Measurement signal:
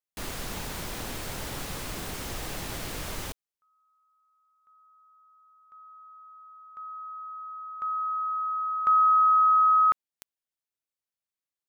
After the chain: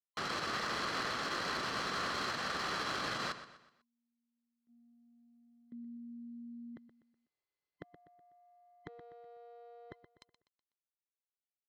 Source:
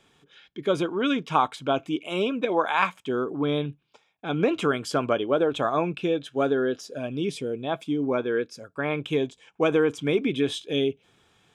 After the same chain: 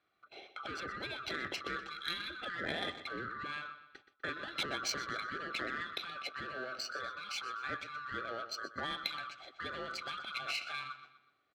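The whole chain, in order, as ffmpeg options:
ffmpeg -i in.wav -filter_complex "[0:a]afftfilt=real='real(if(lt(b,960),b+48*(1-2*mod(floor(b/48),2)),b),0)':imag='imag(if(lt(b,960),b+48*(1-2*mod(floor(b/48),2)),b),0)':win_size=2048:overlap=0.75,bandreject=frequency=3700:width=6.2,asplit=2[link_01][link_02];[link_02]aeval=exprs='clip(val(0),-1,0.0596)':channel_layout=same,volume=-7dB[link_03];[link_01][link_03]amix=inputs=2:normalize=0,lowpass=8300,acompressor=threshold=-32dB:ratio=6:attack=7.3:release=32:knee=1:detection=peak,agate=range=-18dB:threshold=-56dB:ratio=16:release=184:detection=peak,tiltshelf=frequency=810:gain=3.5,afftfilt=real='re*lt(hypot(re,im),0.1)':imag='im*lt(hypot(re,im),0.1)':win_size=1024:overlap=0.75,highpass=frequency=220:poles=1,equalizer=frequency=4100:width_type=o:width=0.48:gain=11,asplit=2[link_04][link_05];[link_05]aecho=0:1:124|248|372|496:0.251|0.103|0.0422|0.0173[link_06];[link_04][link_06]amix=inputs=2:normalize=0,adynamicsmooth=sensitivity=5:basefreq=4100" out.wav

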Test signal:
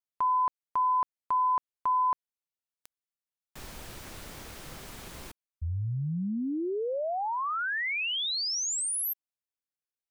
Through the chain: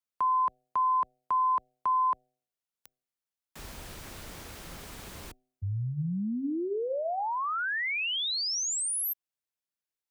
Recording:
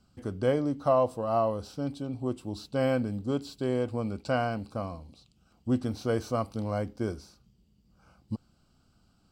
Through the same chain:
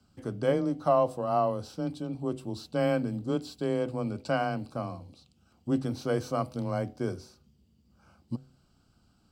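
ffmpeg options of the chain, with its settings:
ffmpeg -i in.wav -af "bandreject=frequency=121.4:width_type=h:width=4,bandreject=frequency=242.8:width_type=h:width=4,bandreject=frequency=364.2:width_type=h:width=4,bandreject=frequency=485.6:width_type=h:width=4,bandreject=frequency=607:width_type=h:width=4,bandreject=frequency=728.4:width_type=h:width=4,afreqshift=16" out.wav

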